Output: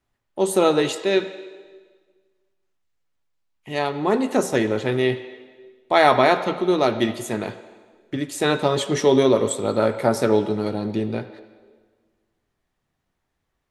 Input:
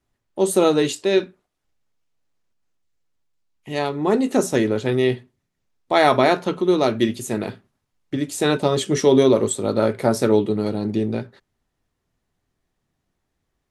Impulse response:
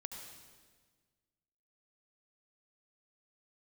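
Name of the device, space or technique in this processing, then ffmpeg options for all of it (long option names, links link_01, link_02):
filtered reverb send: -filter_complex "[0:a]asplit=2[link_01][link_02];[link_02]highpass=480,lowpass=4200[link_03];[1:a]atrim=start_sample=2205[link_04];[link_03][link_04]afir=irnorm=-1:irlink=0,volume=-1.5dB[link_05];[link_01][link_05]amix=inputs=2:normalize=0,volume=-2dB"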